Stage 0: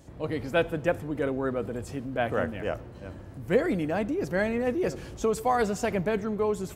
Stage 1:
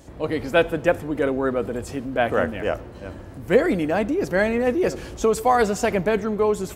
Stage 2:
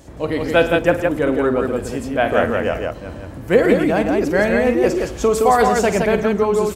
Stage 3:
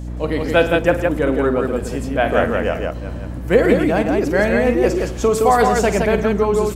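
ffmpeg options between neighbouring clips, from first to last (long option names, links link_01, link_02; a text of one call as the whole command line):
ffmpeg -i in.wav -af "equalizer=frequency=130:width=1.3:gain=-6,volume=7dB" out.wav
ffmpeg -i in.wav -af "aecho=1:1:48|107|168:0.266|0.168|0.668,volume=3dB" out.wav
ffmpeg -i in.wav -af "aeval=exprs='val(0)+0.0447*(sin(2*PI*60*n/s)+sin(2*PI*2*60*n/s)/2+sin(2*PI*3*60*n/s)/3+sin(2*PI*4*60*n/s)/4+sin(2*PI*5*60*n/s)/5)':channel_layout=same" out.wav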